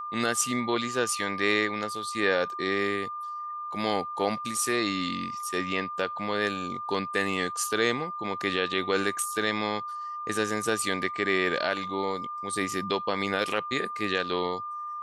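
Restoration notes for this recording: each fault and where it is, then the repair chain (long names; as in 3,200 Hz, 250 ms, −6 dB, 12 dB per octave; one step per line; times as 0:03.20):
whistle 1,200 Hz −33 dBFS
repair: notch filter 1,200 Hz, Q 30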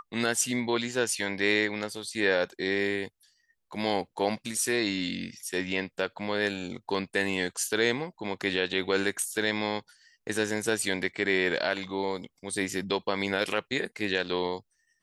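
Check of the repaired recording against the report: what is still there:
none of them is left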